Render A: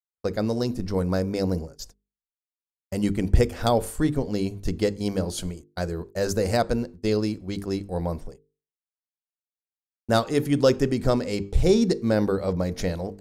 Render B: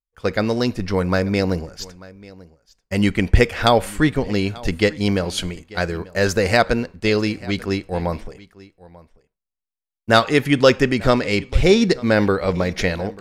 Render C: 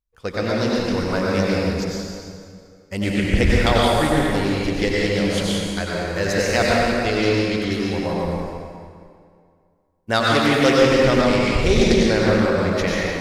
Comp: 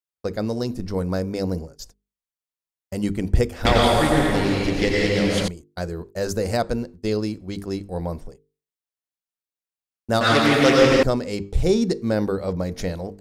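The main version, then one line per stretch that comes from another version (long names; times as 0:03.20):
A
0:03.65–0:05.48: punch in from C
0:10.21–0:11.03: punch in from C
not used: B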